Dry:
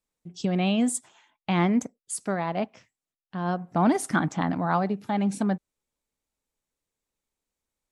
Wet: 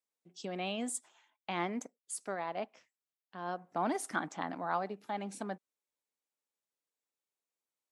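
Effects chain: HPF 350 Hz 12 dB/oct; gain -8 dB

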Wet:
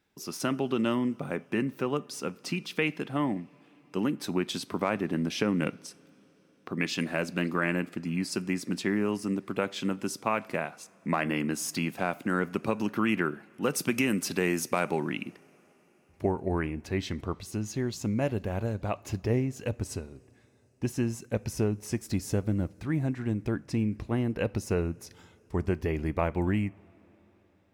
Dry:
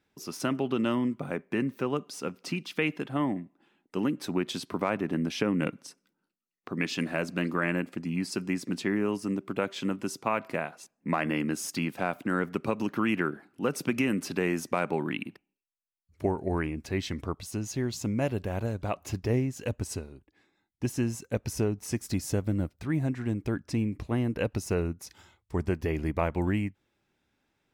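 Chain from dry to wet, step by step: high shelf 3800 Hz +2.5 dB, from 13.62 s +8 dB, from 15 s -3 dB; two-slope reverb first 0.35 s, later 5 s, from -19 dB, DRR 18.5 dB

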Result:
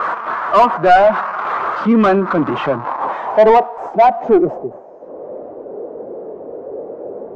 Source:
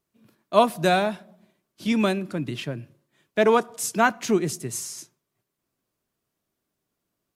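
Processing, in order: switching spikes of -17.5 dBFS; dynamic EQ 7300 Hz, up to +6 dB, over -39 dBFS, Q 0.75; vocal rider within 5 dB 0.5 s; added harmonics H 4 -14 dB, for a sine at -5 dBFS; low-pass sweep 1200 Hz -> 480 Hz, 2.26–5.63; overdrive pedal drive 30 dB, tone 4900 Hz, clips at 0 dBFS, from 4.58 s tone 1500 Hz; spectral expander 1.5:1; gain -1.5 dB

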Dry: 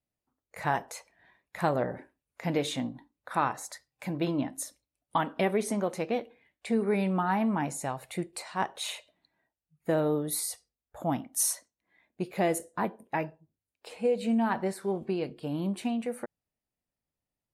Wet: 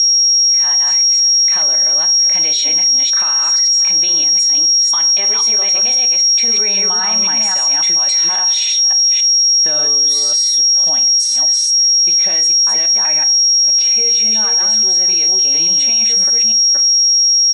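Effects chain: reverse delay 0.27 s, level -2.5 dB; Doppler pass-by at 7.35, 15 m/s, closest 18 m; recorder AGC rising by 7.9 dB/s; air absorption 100 m; comb 5.2 ms, depth 35%; FDN reverb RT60 0.44 s, low-frequency decay 1×, high-frequency decay 0.65×, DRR 9.5 dB; whine 5600 Hz -35 dBFS; band-pass 5300 Hz, Q 1.5; maximiser +34 dB; gain -7 dB

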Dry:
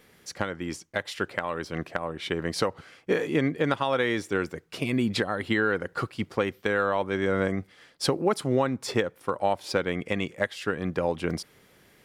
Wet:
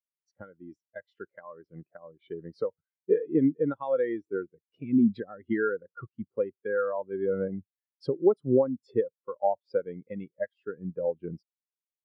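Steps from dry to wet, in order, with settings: spectral expander 2.5:1

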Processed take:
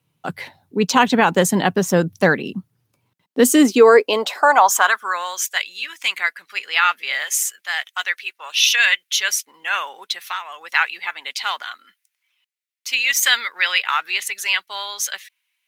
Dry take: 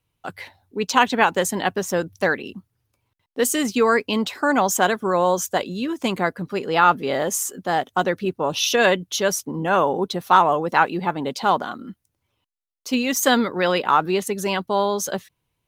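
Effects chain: 7.24–9.07 bell 200 Hz -12.5 dB 1.9 oct; 10.2–10.61 compressor 6:1, threshold -20 dBFS, peak gain reduction 11 dB; high-pass sweep 150 Hz -> 2100 Hz, 3.07–5.36; maximiser +5 dB; gain -1 dB

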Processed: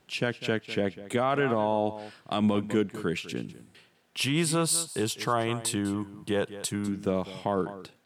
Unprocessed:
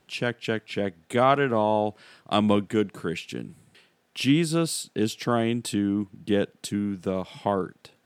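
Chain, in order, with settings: echo 0.2 s -16.5 dB; limiter -15 dBFS, peak gain reduction 8 dB; 4.19–6.88 fifteen-band EQ 250 Hz -9 dB, 1000 Hz +9 dB, 10000 Hz +8 dB

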